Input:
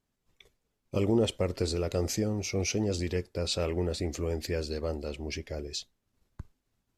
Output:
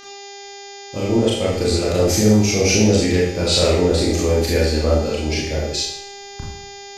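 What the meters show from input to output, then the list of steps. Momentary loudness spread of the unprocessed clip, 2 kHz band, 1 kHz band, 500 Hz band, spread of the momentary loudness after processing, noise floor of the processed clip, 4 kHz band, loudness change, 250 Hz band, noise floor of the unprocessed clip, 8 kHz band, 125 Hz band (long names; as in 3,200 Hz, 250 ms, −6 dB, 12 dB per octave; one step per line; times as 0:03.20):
10 LU, +15.5 dB, +15.0 dB, +13.5 dB, 20 LU, −37 dBFS, +15.0 dB, +14.0 dB, +14.0 dB, −81 dBFS, +15.0 dB, +13.0 dB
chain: fade in at the beginning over 2.28 s
hum with harmonics 400 Hz, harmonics 17, −51 dBFS −2 dB per octave
four-comb reverb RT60 0.66 s, combs from 26 ms, DRR −5 dB
level +9 dB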